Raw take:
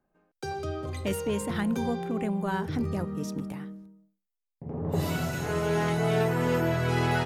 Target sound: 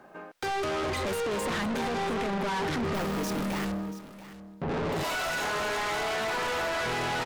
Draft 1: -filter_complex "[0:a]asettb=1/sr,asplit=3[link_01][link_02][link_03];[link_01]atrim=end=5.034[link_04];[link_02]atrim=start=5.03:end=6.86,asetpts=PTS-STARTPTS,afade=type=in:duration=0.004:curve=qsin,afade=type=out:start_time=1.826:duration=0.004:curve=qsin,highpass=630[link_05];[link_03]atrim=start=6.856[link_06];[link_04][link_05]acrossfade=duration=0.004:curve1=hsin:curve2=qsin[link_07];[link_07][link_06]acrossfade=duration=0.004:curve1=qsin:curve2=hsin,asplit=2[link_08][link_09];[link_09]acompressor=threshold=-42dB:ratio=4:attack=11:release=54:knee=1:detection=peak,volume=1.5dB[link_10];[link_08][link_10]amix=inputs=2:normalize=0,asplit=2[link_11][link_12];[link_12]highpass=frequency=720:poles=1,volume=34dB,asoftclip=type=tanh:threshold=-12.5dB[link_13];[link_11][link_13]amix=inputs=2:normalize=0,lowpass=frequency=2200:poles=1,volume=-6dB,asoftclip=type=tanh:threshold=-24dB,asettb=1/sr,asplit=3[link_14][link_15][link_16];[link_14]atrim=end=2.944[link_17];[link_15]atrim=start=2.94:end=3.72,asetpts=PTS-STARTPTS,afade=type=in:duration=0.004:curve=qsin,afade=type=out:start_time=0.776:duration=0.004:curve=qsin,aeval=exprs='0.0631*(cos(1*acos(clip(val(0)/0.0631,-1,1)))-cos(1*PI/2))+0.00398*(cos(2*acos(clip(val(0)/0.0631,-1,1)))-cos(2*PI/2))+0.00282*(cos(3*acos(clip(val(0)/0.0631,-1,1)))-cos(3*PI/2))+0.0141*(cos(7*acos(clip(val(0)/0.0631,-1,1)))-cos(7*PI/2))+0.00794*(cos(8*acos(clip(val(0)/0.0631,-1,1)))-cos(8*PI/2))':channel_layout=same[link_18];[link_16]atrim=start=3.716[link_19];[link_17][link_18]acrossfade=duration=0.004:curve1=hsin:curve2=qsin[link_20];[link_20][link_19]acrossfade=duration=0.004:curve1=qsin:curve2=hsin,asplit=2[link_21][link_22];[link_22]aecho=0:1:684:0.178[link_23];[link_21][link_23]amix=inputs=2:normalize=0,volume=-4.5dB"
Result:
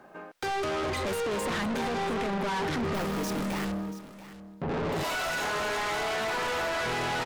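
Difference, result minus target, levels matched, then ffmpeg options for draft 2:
downward compressor: peak gain reduction +6 dB
-filter_complex "[0:a]asettb=1/sr,asplit=3[link_01][link_02][link_03];[link_01]atrim=end=5.034[link_04];[link_02]atrim=start=5.03:end=6.86,asetpts=PTS-STARTPTS,afade=type=in:duration=0.004:curve=qsin,afade=type=out:start_time=1.826:duration=0.004:curve=qsin,highpass=630[link_05];[link_03]atrim=start=6.856[link_06];[link_04][link_05]acrossfade=duration=0.004:curve1=hsin:curve2=qsin[link_07];[link_07][link_06]acrossfade=duration=0.004:curve1=qsin:curve2=hsin,asplit=2[link_08][link_09];[link_09]acompressor=threshold=-34dB:ratio=4:attack=11:release=54:knee=1:detection=peak,volume=1.5dB[link_10];[link_08][link_10]amix=inputs=2:normalize=0,asplit=2[link_11][link_12];[link_12]highpass=frequency=720:poles=1,volume=34dB,asoftclip=type=tanh:threshold=-12.5dB[link_13];[link_11][link_13]amix=inputs=2:normalize=0,lowpass=frequency=2200:poles=1,volume=-6dB,asoftclip=type=tanh:threshold=-24dB,asettb=1/sr,asplit=3[link_14][link_15][link_16];[link_14]atrim=end=2.944[link_17];[link_15]atrim=start=2.94:end=3.72,asetpts=PTS-STARTPTS,afade=type=in:duration=0.004:curve=qsin,afade=type=out:start_time=0.776:duration=0.004:curve=qsin,aeval=exprs='0.0631*(cos(1*acos(clip(val(0)/0.0631,-1,1)))-cos(1*PI/2))+0.00398*(cos(2*acos(clip(val(0)/0.0631,-1,1)))-cos(2*PI/2))+0.00282*(cos(3*acos(clip(val(0)/0.0631,-1,1)))-cos(3*PI/2))+0.0141*(cos(7*acos(clip(val(0)/0.0631,-1,1)))-cos(7*PI/2))+0.00794*(cos(8*acos(clip(val(0)/0.0631,-1,1)))-cos(8*PI/2))':channel_layout=same[link_18];[link_16]atrim=start=3.716[link_19];[link_17][link_18]acrossfade=duration=0.004:curve1=hsin:curve2=qsin[link_20];[link_20][link_19]acrossfade=duration=0.004:curve1=qsin:curve2=hsin,asplit=2[link_21][link_22];[link_22]aecho=0:1:684:0.178[link_23];[link_21][link_23]amix=inputs=2:normalize=0,volume=-4.5dB"

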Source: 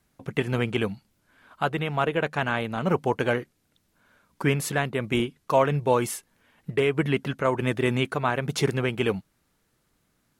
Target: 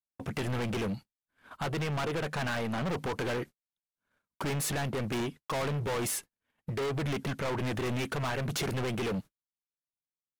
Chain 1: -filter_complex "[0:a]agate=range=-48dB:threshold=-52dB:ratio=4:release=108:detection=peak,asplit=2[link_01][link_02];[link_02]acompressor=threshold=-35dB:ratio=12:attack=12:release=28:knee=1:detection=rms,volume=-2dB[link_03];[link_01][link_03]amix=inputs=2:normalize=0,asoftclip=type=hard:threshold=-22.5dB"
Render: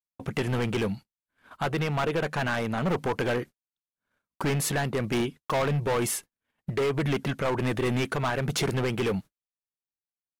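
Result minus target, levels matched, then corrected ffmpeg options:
hard clipping: distortion −4 dB
-filter_complex "[0:a]agate=range=-48dB:threshold=-52dB:ratio=4:release=108:detection=peak,asplit=2[link_01][link_02];[link_02]acompressor=threshold=-35dB:ratio=12:attack=12:release=28:knee=1:detection=rms,volume=-2dB[link_03];[link_01][link_03]amix=inputs=2:normalize=0,asoftclip=type=hard:threshold=-30dB"

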